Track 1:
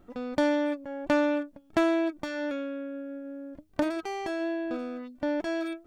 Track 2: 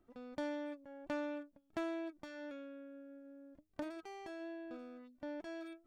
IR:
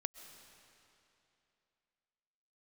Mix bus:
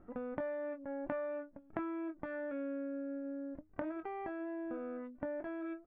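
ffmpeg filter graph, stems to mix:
-filter_complex "[0:a]acompressor=threshold=-35dB:ratio=6,volume=-2.5dB[a];[1:a]adelay=22,volume=-2.5dB[b];[a][b]amix=inputs=2:normalize=0,lowpass=f=1.9k:w=0.5412,lowpass=f=1.9k:w=1.3066"

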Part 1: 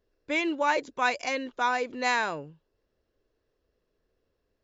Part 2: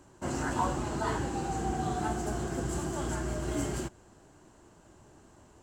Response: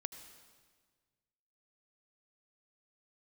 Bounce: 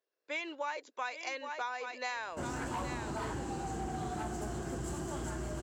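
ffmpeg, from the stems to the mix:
-filter_complex "[0:a]highpass=550,dynaudnorm=f=160:g=3:m=4dB,volume=-8.5dB,asplit=2[a][b];[b]volume=-11dB[c];[1:a]volume=27dB,asoftclip=hard,volume=-27dB,adelay=2150,volume=-3dB[d];[c]aecho=0:1:819:1[e];[a][d][e]amix=inputs=3:normalize=0,acompressor=threshold=-34dB:ratio=6"

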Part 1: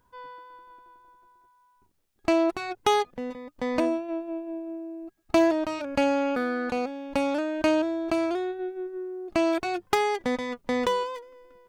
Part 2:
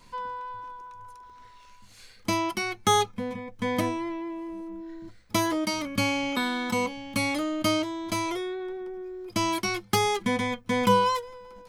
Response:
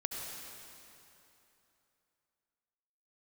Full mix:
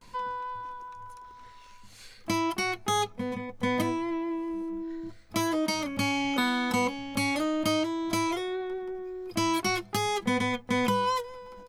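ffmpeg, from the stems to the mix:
-filter_complex "[0:a]lowpass=1.9k,alimiter=limit=-18.5dB:level=0:latency=1,volume=-11dB,asplit=2[a][b];[b]volume=-21dB[c];[1:a]adelay=13,volume=1.5dB[d];[2:a]atrim=start_sample=2205[e];[c][e]afir=irnorm=-1:irlink=0[f];[a][d][f]amix=inputs=3:normalize=0,alimiter=limit=-16dB:level=0:latency=1:release=450"

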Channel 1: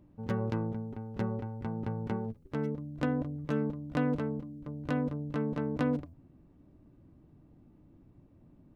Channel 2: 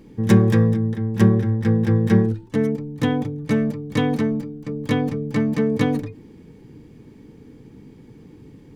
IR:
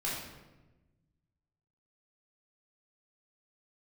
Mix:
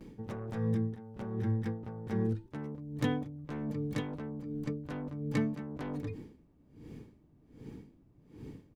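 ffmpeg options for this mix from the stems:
-filter_complex "[0:a]aeval=exprs='0.119*sin(PI/2*2.24*val(0)/0.119)':c=same,volume=-16dB[a];[1:a]aeval=exprs='val(0)*pow(10,-32*(0.5-0.5*cos(2*PI*1.3*n/s))/20)':c=same,adelay=8.4,volume=-1dB[b];[a][b]amix=inputs=2:normalize=0,acompressor=threshold=-34dB:ratio=2"

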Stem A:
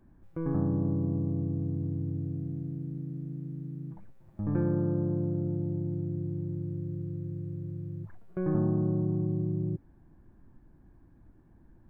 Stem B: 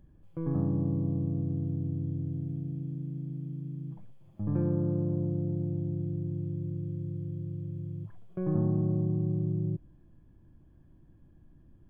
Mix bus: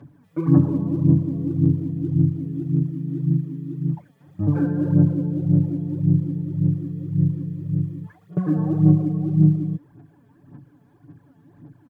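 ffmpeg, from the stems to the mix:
-filter_complex "[0:a]aphaser=in_gain=1:out_gain=1:delay=2.8:decay=0.41:speed=0.95:type=sinusoidal,acompressor=threshold=-29dB:ratio=6,highpass=f=99:w=0.5412,highpass=f=99:w=1.3066,volume=2.5dB[a];[1:a]highpass=f=100:w=0.5412,highpass=f=100:w=1.3066,adelay=3.5,volume=1.5dB[b];[a][b]amix=inputs=2:normalize=0,aecho=1:1:7:0.95,aphaser=in_gain=1:out_gain=1:delay=4.6:decay=0.64:speed=1.8:type=sinusoidal"

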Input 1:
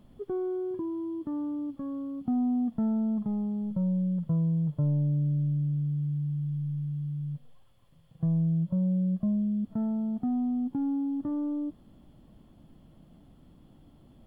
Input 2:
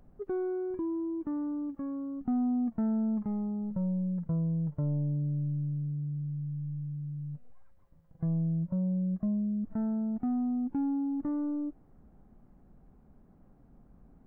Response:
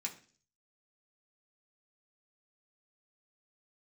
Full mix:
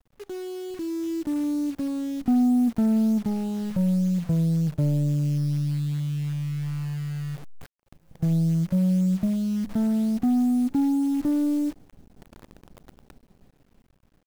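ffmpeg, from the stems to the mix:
-filter_complex "[0:a]highpass=f=64:p=1,acrusher=bits=6:mix=0:aa=0.000001,asoftclip=type=hard:threshold=-35.5dB,volume=-19dB[a];[1:a]dynaudnorm=f=200:g=11:m=11.5dB,equalizer=f=1.1k:t=o:w=0.41:g=-12,adelay=0.7,volume=-3.5dB,asplit=2[b][c];[c]volume=-13dB[d];[2:a]atrim=start_sample=2205[e];[d][e]afir=irnorm=-1:irlink=0[f];[a][b][f]amix=inputs=3:normalize=0,acrusher=bits=8:dc=4:mix=0:aa=0.000001"

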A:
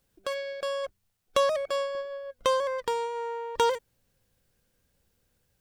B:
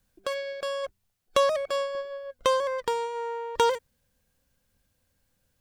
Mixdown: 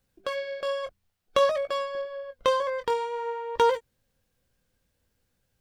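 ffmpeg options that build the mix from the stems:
-filter_complex "[0:a]flanger=delay=17:depth=7.4:speed=0.55,volume=-1dB[a];[1:a]lowpass=5.3k,volume=-5dB[b];[a][b]amix=inputs=2:normalize=0"

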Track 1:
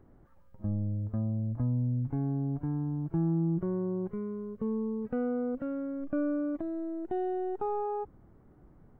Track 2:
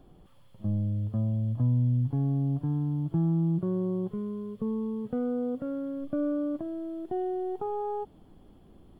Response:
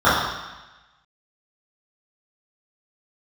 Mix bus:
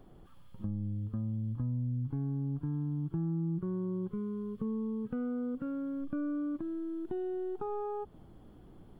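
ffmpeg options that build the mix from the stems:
-filter_complex "[0:a]volume=0dB[a];[1:a]alimiter=limit=-24dB:level=0:latency=1,volume=-2.5dB[b];[a][b]amix=inputs=2:normalize=0,acompressor=threshold=-38dB:ratio=2"

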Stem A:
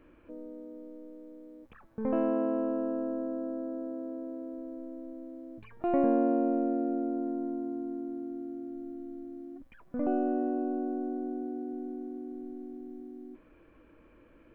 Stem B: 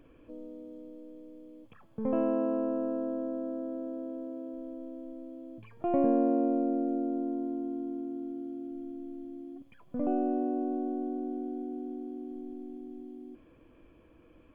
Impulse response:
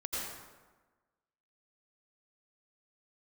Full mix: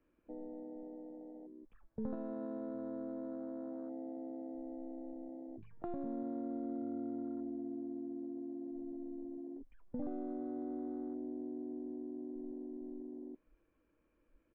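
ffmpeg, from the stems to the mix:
-filter_complex "[0:a]alimiter=limit=-23dB:level=0:latency=1:release=256,volume=-1.5dB[a];[1:a]adelay=13,volume=-18dB[b];[a][b]amix=inputs=2:normalize=0,afwtdn=0.00891,acrossover=split=200|3000[c][d][e];[d]acompressor=threshold=-43dB:ratio=6[f];[c][f][e]amix=inputs=3:normalize=0"

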